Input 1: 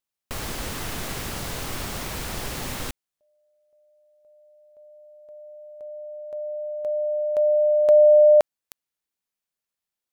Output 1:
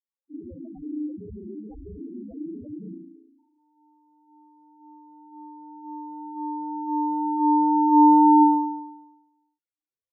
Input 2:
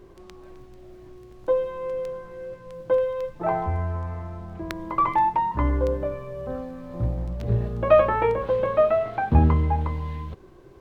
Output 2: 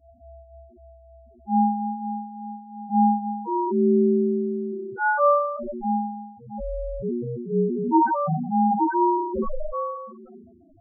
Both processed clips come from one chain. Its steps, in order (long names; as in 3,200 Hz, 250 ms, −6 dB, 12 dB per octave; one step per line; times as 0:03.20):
spring reverb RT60 1 s, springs 35 ms, chirp 40 ms, DRR −10 dB
ring modulation 300 Hz
in parallel at −11 dB: soft clipping −8.5 dBFS
on the sum: spectral peaks only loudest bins 2
level −5 dB